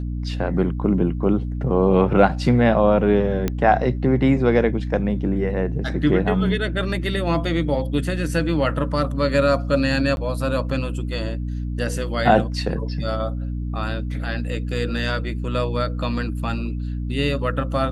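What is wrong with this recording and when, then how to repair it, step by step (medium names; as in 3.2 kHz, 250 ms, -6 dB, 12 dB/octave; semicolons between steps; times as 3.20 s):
hum 60 Hz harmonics 5 -26 dBFS
3.48 s: pop -9 dBFS
10.16–10.17 s: dropout 11 ms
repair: de-click; de-hum 60 Hz, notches 5; interpolate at 10.16 s, 11 ms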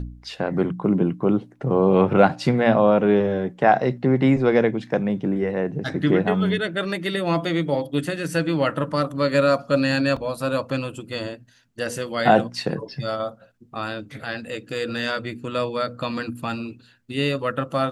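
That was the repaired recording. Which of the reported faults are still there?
nothing left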